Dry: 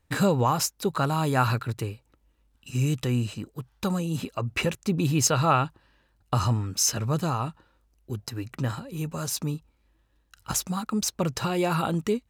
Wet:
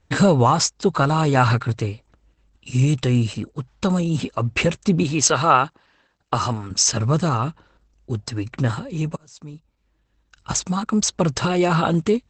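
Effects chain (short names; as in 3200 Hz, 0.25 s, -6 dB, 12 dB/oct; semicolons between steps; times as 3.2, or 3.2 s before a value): 5.03–6.71 HPF 340 Hz 6 dB/oct; 7.27–8.11 dynamic EQ 910 Hz, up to -4 dB, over -43 dBFS, Q 4.5; 9.16–10.85 fade in; gain +7.5 dB; Opus 12 kbps 48000 Hz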